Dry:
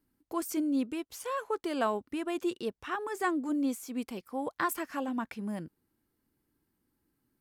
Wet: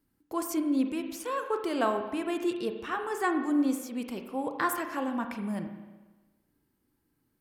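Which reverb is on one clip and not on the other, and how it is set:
spring reverb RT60 1.2 s, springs 34/41 ms, chirp 55 ms, DRR 5.5 dB
level +1.5 dB

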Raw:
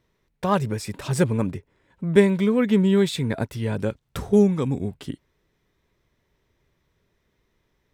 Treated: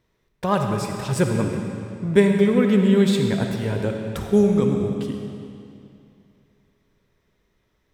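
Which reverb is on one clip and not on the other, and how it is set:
comb and all-pass reverb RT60 2.6 s, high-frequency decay 0.9×, pre-delay 20 ms, DRR 3 dB

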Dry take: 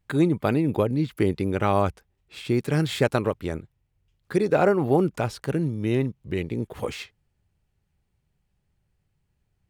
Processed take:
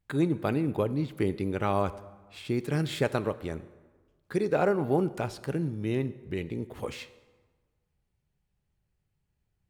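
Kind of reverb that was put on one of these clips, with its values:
dense smooth reverb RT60 1.4 s, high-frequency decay 0.65×, DRR 14 dB
level −5.5 dB

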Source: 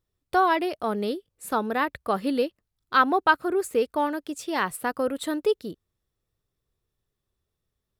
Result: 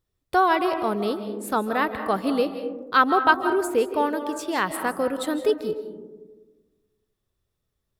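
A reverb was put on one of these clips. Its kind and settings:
comb and all-pass reverb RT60 1.3 s, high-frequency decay 0.25×, pre-delay 120 ms, DRR 8.5 dB
level +1.5 dB

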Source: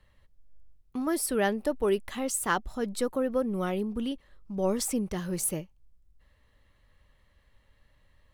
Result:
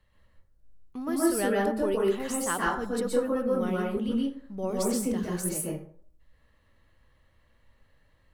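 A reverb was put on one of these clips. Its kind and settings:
dense smooth reverb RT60 0.54 s, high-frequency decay 0.5×, pre-delay 110 ms, DRR −4 dB
level −4.5 dB

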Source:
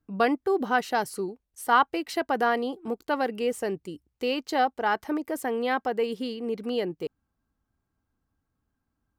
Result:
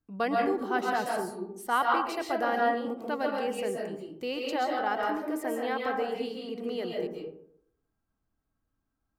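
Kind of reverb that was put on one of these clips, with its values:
comb and all-pass reverb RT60 0.7 s, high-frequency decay 0.4×, pre-delay 95 ms, DRR −1.5 dB
level −6.5 dB

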